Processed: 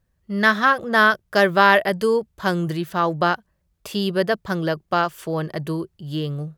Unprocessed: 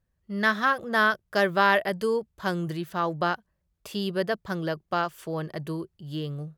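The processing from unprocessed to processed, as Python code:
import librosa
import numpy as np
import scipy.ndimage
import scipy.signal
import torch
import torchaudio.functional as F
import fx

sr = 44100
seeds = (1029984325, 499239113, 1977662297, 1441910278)

y = fx.high_shelf(x, sr, hz=11000.0, db=-5.5, at=(0.58, 0.98))
y = F.gain(torch.from_numpy(y), 6.5).numpy()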